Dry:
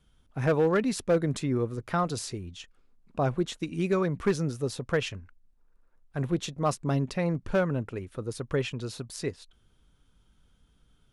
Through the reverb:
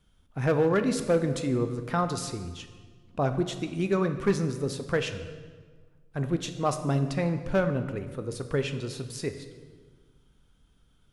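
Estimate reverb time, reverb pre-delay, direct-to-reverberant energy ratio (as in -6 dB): 1.5 s, 10 ms, 8.0 dB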